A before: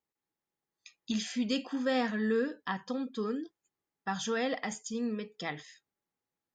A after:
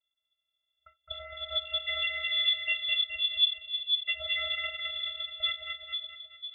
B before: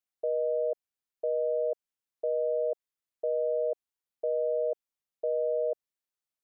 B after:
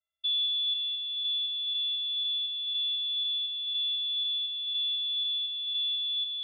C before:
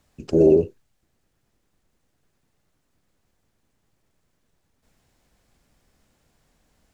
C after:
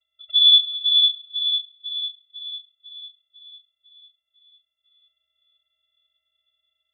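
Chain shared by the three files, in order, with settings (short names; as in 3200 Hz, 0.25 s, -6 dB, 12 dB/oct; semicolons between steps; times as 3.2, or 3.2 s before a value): split-band echo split 560 Hz, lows 0.5 s, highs 0.213 s, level -3.5 dB; vocoder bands 16, square 352 Hz; inverted band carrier 3800 Hz; gain +1 dB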